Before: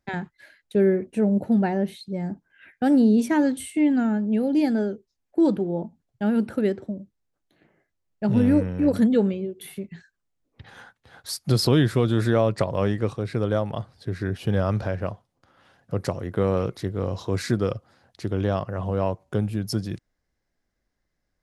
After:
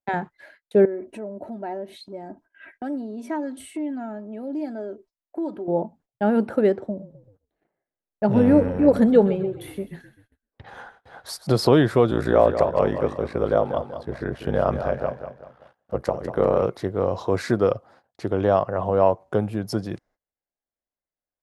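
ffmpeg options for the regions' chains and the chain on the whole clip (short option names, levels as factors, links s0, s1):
-filter_complex "[0:a]asettb=1/sr,asplit=3[s0][s1][s2];[s0]atrim=end=0.854[s3];[s1]atrim=start=0.85:end=5.68,asetpts=PTS-STARTPTS,afade=t=in:d=0.004:c=qsin,afade=t=out:st=4.826:d=0.004:c=qsin,acompressor=threshold=0.0126:ratio=3:attack=3.2:release=140:knee=1:detection=peak,aecho=1:1:3.1:0.63,atrim=end_sample=213003[s4];[s2]atrim=start=5.676[s5];[s3][s4]acrossfade=d=0.004:c1=hsin:c2=qsin[s6];[s6][s5]acrossfade=d=0.004:c1=qsin:c2=hsin,asettb=1/sr,asplit=3[s7][s8][s9];[s7]atrim=end=6.854[s10];[s8]atrim=start=6.85:end=11.47,asetpts=PTS-STARTPTS,afade=t=in:d=0.004:c=qsin,afade=t=out:st=4.616:d=0.004:c=qsin,lowshelf=f=63:g=7,asplit=6[s11][s12][s13][s14][s15][s16];[s12]adelay=129,afreqshift=-32,volume=0.188[s17];[s13]adelay=258,afreqshift=-64,volume=0.101[s18];[s14]adelay=387,afreqshift=-96,volume=0.055[s19];[s15]adelay=516,afreqshift=-128,volume=0.0295[s20];[s16]adelay=645,afreqshift=-160,volume=0.016[s21];[s11][s17][s18][s19][s20][s21]amix=inputs=6:normalize=0,atrim=end_sample=203742[s22];[s9]atrim=start=11.466[s23];[s10][s22]acrossfade=d=0.004:c1=hsin:c2=qsin[s24];[s24][s23]acrossfade=d=0.004:c1=qsin:c2=hsin,asettb=1/sr,asplit=3[s25][s26][s27];[s25]atrim=end=12.104[s28];[s26]atrim=start=12.1:end=16.62,asetpts=PTS-STARTPTS,afade=t=in:d=0.004:c=qsin,afade=t=out:st=4.516:d=0.004:c=qsin,aeval=exprs='val(0)*sin(2*PI*30*n/s)':c=same,aecho=1:1:192|384|576|768:0.335|0.127|0.0484|0.0184,atrim=end_sample=199332[s29];[s27]atrim=start=16.616[s30];[s28][s29]acrossfade=d=0.004:c1=hsin:c2=qsin[s31];[s31][s30]acrossfade=d=0.004:c1=qsin:c2=hsin,agate=range=0.0891:threshold=0.00178:ratio=16:detection=peak,equalizer=f=720:w=0.5:g=14,volume=0.596"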